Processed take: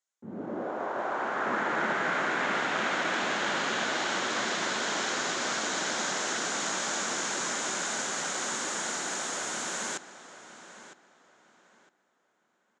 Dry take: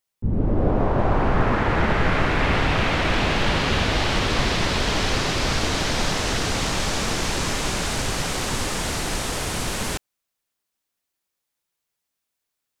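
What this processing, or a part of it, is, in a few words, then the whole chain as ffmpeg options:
television speaker: -filter_complex "[0:a]asettb=1/sr,asplit=3[link_01][link_02][link_03];[link_01]atrim=end=0.634[link_04];[link_02]atrim=start=0.63:end=1.46,asetpts=PTS-STARTPTS,afade=type=in:duration=0.004:curve=qsin,afade=type=out:start_time=0.826:duration=0.004:curve=qsin,equalizer=frequency=170:width=0.93:gain=-11[link_05];[link_03]atrim=start=1.456[link_06];[link_04][link_05]acrossfade=duration=0.004:curve1=hsin:curve2=qsin[link_07];[link_07][link_06]acrossfade=duration=0.004:curve1=qsin:curve2=hsin,highpass=frequency=230:width=0.5412,highpass=frequency=230:width=1.3066,equalizer=frequency=280:width_type=q:width=4:gain=-5,equalizer=frequency=450:width_type=q:width=4:gain=-4,equalizer=frequency=1500:width_type=q:width=4:gain=6,equalizer=frequency=2600:width_type=q:width=4:gain=-5,equalizer=frequency=4700:width_type=q:width=4:gain=-4,equalizer=frequency=6900:width_type=q:width=4:gain=10,lowpass=frequency=8100:width=0.5412,lowpass=frequency=8100:width=1.3066,asplit=2[link_08][link_09];[link_09]adelay=958,lowpass=frequency=3700:poles=1,volume=-13dB,asplit=2[link_10][link_11];[link_11]adelay=958,lowpass=frequency=3700:poles=1,volume=0.27,asplit=2[link_12][link_13];[link_13]adelay=958,lowpass=frequency=3700:poles=1,volume=0.27[link_14];[link_08][link_10][link_12][link_14]amix=inputs=4:normalize=0,volume=-6.5dB"

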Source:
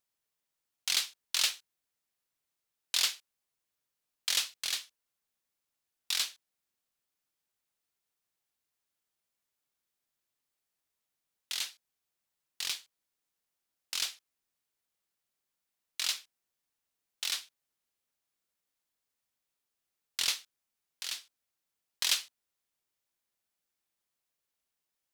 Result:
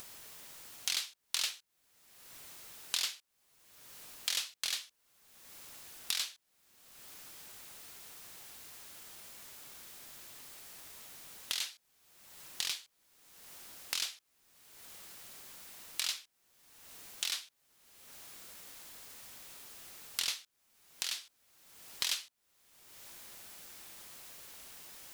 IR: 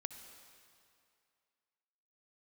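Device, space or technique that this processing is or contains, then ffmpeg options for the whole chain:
upward and downward compression: -af "acompressor=mode=upward:threshold=-35dB:ratio=2.5,acompressor=threshold=-41dB:ratio=3,volume=6.5dB"

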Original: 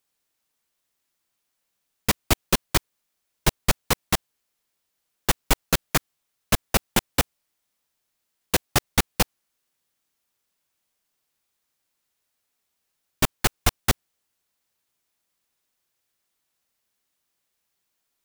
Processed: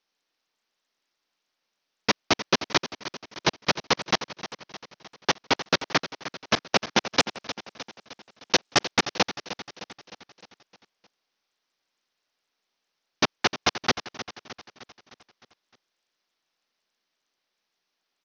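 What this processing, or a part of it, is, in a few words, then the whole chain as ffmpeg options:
Bluetooth headset: -filter_complex "[0:a]asettb=1/sr,asplit=3[link_01][link_02][link_03];[link_01]atrim=end=7.044[link_04];[link_02]atrim=start=7.04:end=8.91,asetpts=PTS-STARTPTS,afade=type=in:duration=0.004:curve=qsin,afade=type=out:start_time=1.866:duration=0.004:curve=qsin,highshelf=frequency=3900:gain=5.5[link_05];[link_03]atrim=start=8.906[link_06];[link_04][link_05]acrossfade=duration=0.004:curve1=hsin:curve2=qsin[link_07];[link_07][link_06]acrossfade=duration=0.004:curve1=qsin:curve2=hsin,highpass=230,aecho=1:1:307|614|921|1228|1535|1842:0.224|0.121|0.0653|0.0353|0.019|0.0103,aresample=16000,aresample=44100,volume=1.5dB" -ar 48000 -c:a sbc -b:a 64k

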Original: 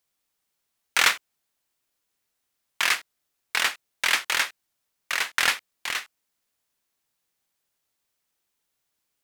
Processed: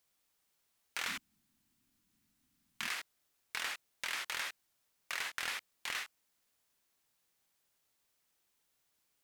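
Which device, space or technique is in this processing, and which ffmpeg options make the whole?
de-esser from a sidechain: -filter_complex "[0:a]asettb=1/sr,asplit=3[link_01][link_02][link_03];[link_01]atrim=end=1.084[link_04];[link_02]atrim=start=1.08:end=2.88,asetpts=PTS-STARTPTS,afade=type=in:duration=0.004:curve=qsin,afade=type=out:start_time=1.796:duration=0.004:curve=qsin,lowshelf=frequency=340:width_type=q:width=3:gain=11.5[link_05];[link_03]atrim=start=2.876[link_06];[link_04][link_05]acrossfade=duration=0.004:curve1=hsin:curve2=qsin[link_07];[link_07][link_06]acrossfade=duration=0.004:curve1=qsin:curve2=hsin,asplit=2[link_08][link_09];[link_09]highpass=frequency=6600:poles=1,apad=whole_len=407177[link_10];[link_08][link_10]sidechaincompress=threshold=-39dB:ratio=12:attack=1.5:release=54"

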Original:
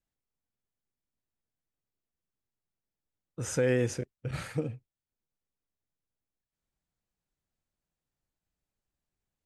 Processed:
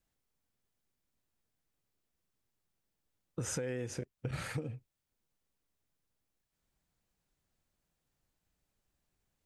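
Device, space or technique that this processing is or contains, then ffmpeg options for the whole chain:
serial compression, leveller first: -af "acompressor=threshold=-30dB:ratio=2,acompressor=threshold=-41dB:ratio=6,volume=6dB"

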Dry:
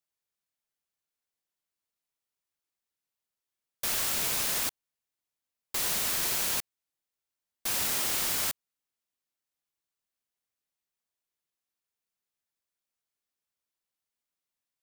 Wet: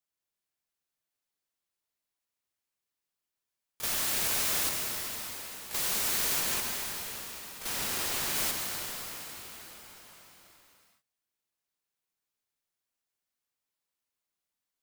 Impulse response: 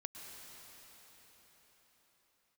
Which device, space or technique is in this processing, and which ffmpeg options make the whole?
shimmer-style reverb: -filter_complex "[0:a]asplit=3[link_01][link_02][link_03];[link_01]afade=type=out:start_time=6.39:duration=0.02[link_04];[link_02]highshelf=frequency=4800:gain=-4.5,afade=type=in:start_time=6.39:duration=0.02,afade=type=out:start_time=8.34:duration=0.02[link_05];[link_03]afade=type=in:start_time=8.34:duration=0.02[link_06];[link_04][link_05][link_06]amix=inputs=3:normalize=0,asplit=2[link_07][link_08];[link_08]asetrate=88200,aresample=44100,atempo=0.5,volume=-5dB[link_09];[link_07][link_09]amix=inputs=2:normalize=0[link_10];[1:a]atrim=start_sample=2205[link_11];[link_10][link_11]afir=irnorm=-1:irlink=0,volume=3dB"

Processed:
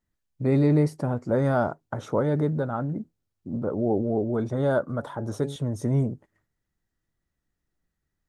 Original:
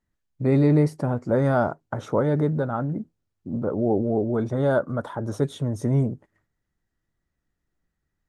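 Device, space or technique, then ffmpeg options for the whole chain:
exciter from parts: -filter_complex "[0:a]asplit=2[link_01][link_02];[link_02]highpass=2400,asoftclip=type=tanh:threshold=-36dB,volume=-11.5dB[link_03];[link_01][link_03]amix=inputs=2:normalize=0,asettb=1/sr,asplit=3[link_04][link_05][link_06];[link_04]atrim=end=4.954[link_07];[link_05]atrim=start=4.95:end=5.56,asetpts=PTS-STARTPTS,afade=type=in:duration=0.004:curve=qsin,afade=type=out:start_time=0.606:duration=0.004:curve=qsin,bandreject=frequency=140:width_type=h:width=4,bandreject=frequency=280:width_type=h:width=4,bandreject=frequency=420:width_type=h:width=4,bandreject=frequency=560:width_type=h:width=4,bandreject=frequency=700:width_type=h:width=4,bandreject=frequency=840:width_type=h:width=4[link_08];[link_06]atrim=start=5.556[link_09];[link_07][link_08]acrossfade=duration=0.004:curve1=hsin:curve2=qsin[link_10];[link_10][link_09]acrossfade=duration=0.004:curve1=qsin:curve2=hsin,volume=-2dB"

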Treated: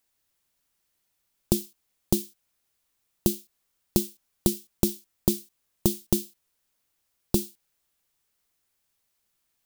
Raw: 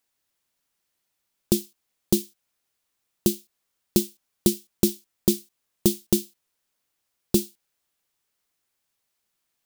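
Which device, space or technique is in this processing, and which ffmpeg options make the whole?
ASMR close-microphone chain: -af "lowshelf=frequency=100:gain=8,acompressor=threshold=-18dB:ratio=6,highshelf=frequency=8800:gain=3.5"

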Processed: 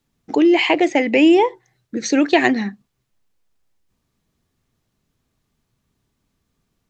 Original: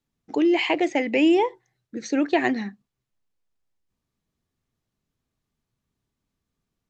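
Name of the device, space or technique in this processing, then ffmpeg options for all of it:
parallel compression: -filter_complex "[0:a]asplit=2[link_01][link_02];[link_02]acompressor=threshold=-33dB:ratio=6,volume=-2.5dB[link_03];[link_01][link_03]amix=inputs=2:normalize=0,asplit=3[link_04][link_05][link_06];[link_04]afade=type=out:start_time=2.02:duration=0.02[link_07];[link_05]adynamicequalizer=threshold=0.0112:dfrequency=2300:dqfactor=0.7:tfrequency=2300:tqfactor=0.7:attack=5:release=100:ratio=0.375:range=3:mode=boostabove:tftype=highshelf,afade=type=in:start_time=2.02:duration=0.02,afade=type=out:start_time=2.46:duration=0.02[link_08];[link_06]afade=type=in:start_time=2.46:duration=0.02[link_09];[link_07][link_08][link_09]amix=inputs=3:normalize=0,volume=5dB"

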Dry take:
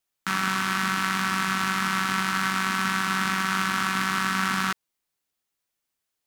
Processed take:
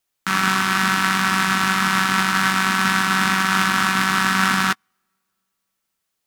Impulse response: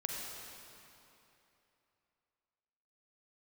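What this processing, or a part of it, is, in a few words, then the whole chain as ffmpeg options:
keyed gated reverb: -filter_complex "[0:a]asplit=3[link_01][link_02][link_03];[1:a]atrim=start_sample=2205[link_04];[link_02][link_04]afir=irnorm=-1:irlink=0[link_05];[link_03]apad=whole_len=276388[link_06];[link_05][link_06]sidechaingate=range=-44dB:threshold=-23dB:ratio=16:detection=peak,volume=-3dB[link_07];[link_01][link_07]amix=inputs=2:normalize=0,volume=5dB"

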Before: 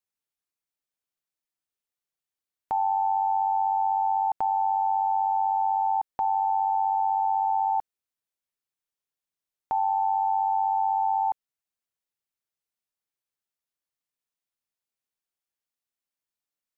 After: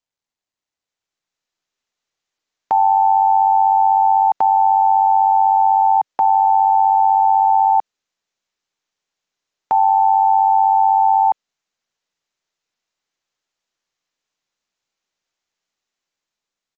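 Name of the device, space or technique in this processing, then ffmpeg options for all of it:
Bluetooth headset: -filter_complex "[0:a]asettb=1/sr,asplit=3[link_01][link_02][link_03];[link_01]atrim=end=5.974[link_04];[link_02]atrim=start=5.97:end=6.47,asetpts=PTS-STARTPTS,afade=type=in:duration=0.004:curve=qsin,afade=type=out:start_time=0.496:duration=0.004:curve=qsin,highpass=frequency=120:width=0.5412,highpass=frequency=120:width=1.3066[link_05];[link_03]atrim=start=6.466[link_06];[link_04][link_05]acrossfade=duration=0.004:curve1=hsin:curve2=qsin[link_07];[link_07][link_06]acrossfade=duration=0.004:curve1=qsin:curve2=hsin,highpass=frequency=230:poles=1,dynaudnorm=framelen=540:gausssize=5:maxgain=11.5dB,aresample=16000,aresample=44100" -ar 16000 -c:a sbc -b:a 64k

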